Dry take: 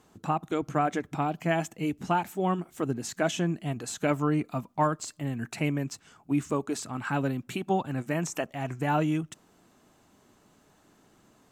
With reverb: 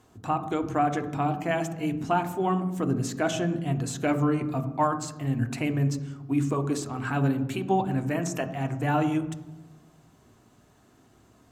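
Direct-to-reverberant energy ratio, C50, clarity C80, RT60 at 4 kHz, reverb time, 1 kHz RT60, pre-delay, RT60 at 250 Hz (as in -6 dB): 6.5 dB, 11.5 dB, 13.5 dB, 0.80 s, 1.1 s, 0.95 s, 3 ms, 1.5 s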